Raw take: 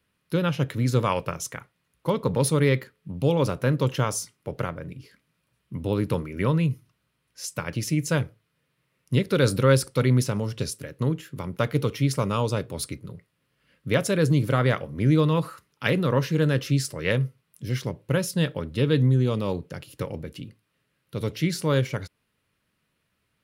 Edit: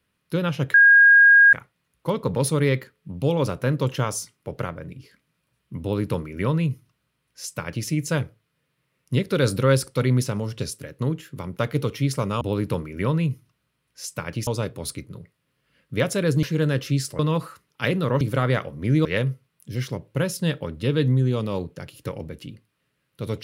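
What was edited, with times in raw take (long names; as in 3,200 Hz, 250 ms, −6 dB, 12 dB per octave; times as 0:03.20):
0:00.74–0:01.53: beep over 1,630 Hz −9 dBFS
0:05.81–0:07.87: duplicate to 0:12.41
0:14.37–0:15.21: swap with 0:16.23–0:16.99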